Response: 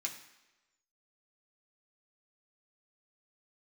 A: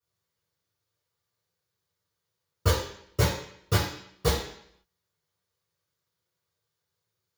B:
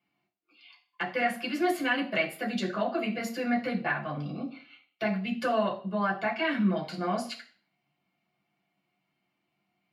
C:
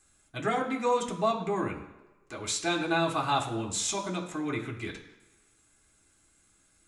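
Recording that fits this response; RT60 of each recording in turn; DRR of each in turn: C; 0.65, 0.45, 1.1 seconds; −12.0, −5.0, −0.5 decibels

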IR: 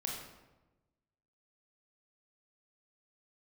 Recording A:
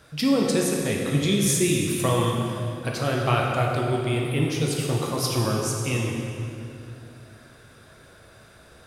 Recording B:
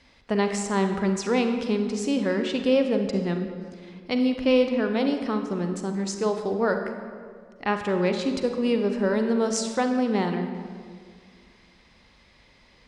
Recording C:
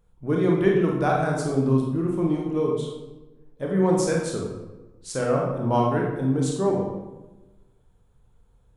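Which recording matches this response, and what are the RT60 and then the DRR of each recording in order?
C; 2.7, 2.0, 1.1 seconds; −1.5, 5.5, −1.5 decibels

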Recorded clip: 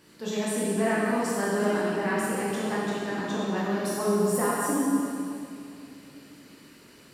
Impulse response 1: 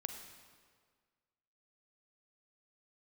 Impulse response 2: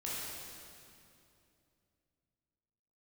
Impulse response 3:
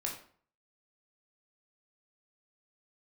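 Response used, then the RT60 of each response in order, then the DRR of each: 2; 1.7, 2.7, 0.50 seconds; 5.5, −7.5, −1.0 decibels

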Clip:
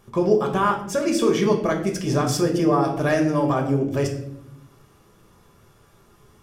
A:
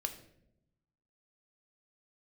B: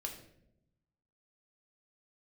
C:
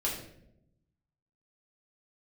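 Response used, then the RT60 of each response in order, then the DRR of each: B; 0.80, 0.80, 0.75 seconds; 5.5, 1.0, −5.5 decibels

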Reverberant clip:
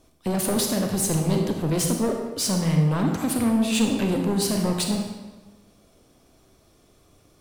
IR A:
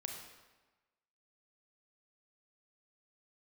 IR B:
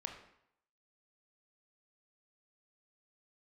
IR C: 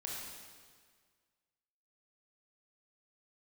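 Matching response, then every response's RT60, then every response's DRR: A; 1.2, 0.75, 1.7 seconds; 2.0, 3.0, −3.5 decibels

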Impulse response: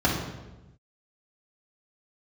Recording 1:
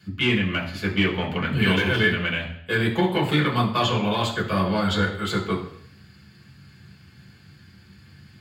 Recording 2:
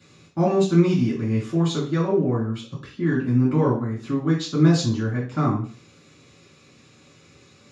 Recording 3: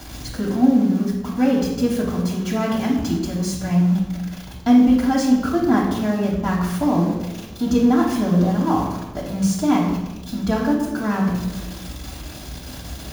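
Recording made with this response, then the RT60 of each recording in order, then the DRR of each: 3; 0.65, 0.40, 1.0 seconds; −4.0, −5.5, −4.0 decibels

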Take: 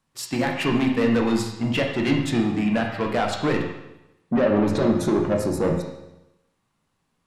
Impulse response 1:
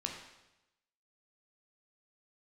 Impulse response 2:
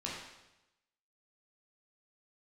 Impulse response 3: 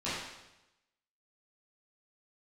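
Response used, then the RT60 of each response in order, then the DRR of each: 1; 0.95, 0.95, 0.95 seconds; 0.5, −5.5, −13.0 decibels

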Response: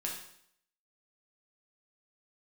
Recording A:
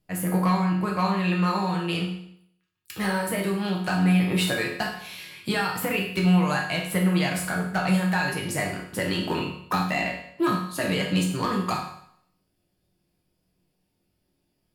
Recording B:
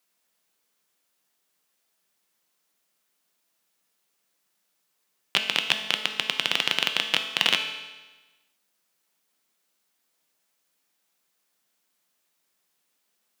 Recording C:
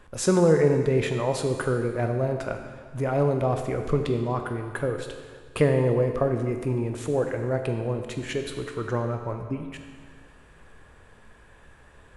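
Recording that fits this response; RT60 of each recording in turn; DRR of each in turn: A; 0.65, 1.2, 1.7 seconds; −2.5, 5.0, 4.5 decibels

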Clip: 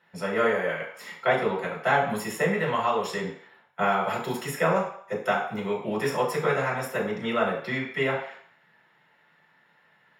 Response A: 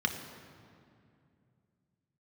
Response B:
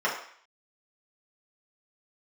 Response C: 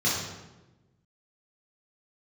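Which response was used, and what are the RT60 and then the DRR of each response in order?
B; 2.5, 0.55, 1.1 seconds; 4.0, −6.5, −8.0 decibels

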